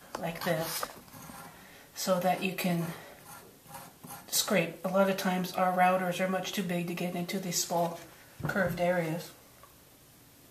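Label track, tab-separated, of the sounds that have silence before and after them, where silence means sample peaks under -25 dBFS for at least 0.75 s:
2.010000	2.810000	sound
4.330000	9.150000	sound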